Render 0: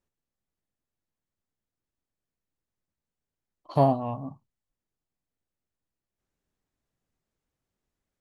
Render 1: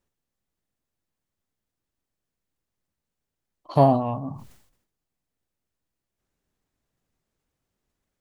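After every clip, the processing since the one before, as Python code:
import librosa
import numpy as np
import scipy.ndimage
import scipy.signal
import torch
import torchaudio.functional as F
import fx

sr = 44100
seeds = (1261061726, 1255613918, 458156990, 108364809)

y = fx.sustainer(x, sr, db_per_s=84.0)
y = y * 10.0 ** (4.0 / 20.0)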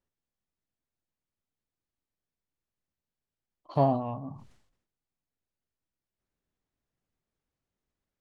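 y = fx.air_absorb(x, sr, metres=61.0)
y = y * 10.0 ** (-7.0 / 20.0)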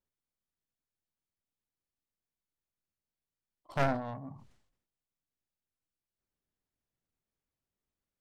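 y = fx.tracing_dist(x, sr, depth_ms=0.42)
y = y * 10.0 ** (-5.0 / 20.0)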